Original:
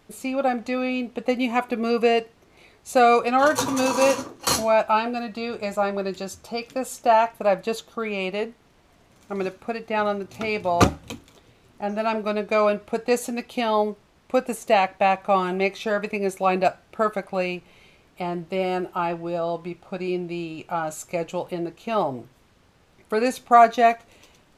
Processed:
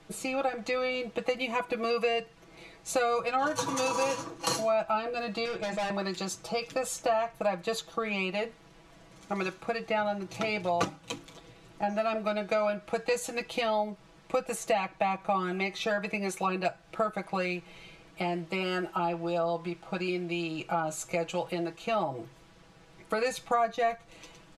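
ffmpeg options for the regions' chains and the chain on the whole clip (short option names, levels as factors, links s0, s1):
-filter_complex "[0:a]asettb=1/sr,asplit=3[s0][s1][s2];[s0]atrim=end=5.454[s3];[s1]atrim=start=5.45:end=5.9,asetpts=PTS-STARTPTS,afade=t=in:d=0.004:c=qsin,afade=t=out:st=0.446:d=0.004:c=qsin,lowpass=5100,bandreject=f=50:t=h:w=6,bandreject=f=100:t=h:w=6,bandreject=f=150:t=h:w=6,bandreject=f=200:t=h:w=6,bandreject=f=250:t=h:w=6,bandreject=f=300:t=h:w=6,bandreject=f=350:t=h:w=6,volume=29.9,asoftclip=hard,volume=0.0335[s4];[s2]atrim=start=5.896[s5];[s3][s4]acrossfade=d=0.004:c1=hsin:c2=qsin[s6];[s6][s5]acrossfade=d=0.004:c1=qsin:c2=hsin,lowpass=10000,aecho=1:1:6.1:0.9,acrossover=split=160|680[s7][s8][s9];[s7]acompressor=threshold=0.00447:ratio=4[s10];[s8]acompressor=threshold=0.0178:ratio=4[s11];[s9]acompressor=threshold=0.0282:ratio=4[s12];[s10][s11][s12]amix=inputs=3:normalize=0"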